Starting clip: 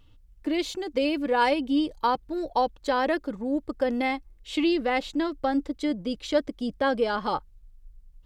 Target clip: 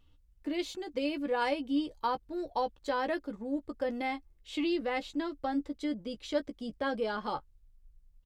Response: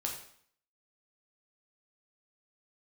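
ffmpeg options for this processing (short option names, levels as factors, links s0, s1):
-filter_complex "[0:a]asplit=2[s0][s1];[s1]adelay=14,volume=0.376[s2];[s0][s2]amix=inputs=2:normalize=0,volume=0.398"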